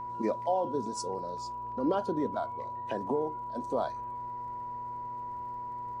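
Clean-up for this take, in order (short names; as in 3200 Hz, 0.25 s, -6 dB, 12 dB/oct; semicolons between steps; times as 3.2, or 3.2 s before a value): de-click; de-hum 119.4 Hz, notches 5; notch 980 Hz, Q 30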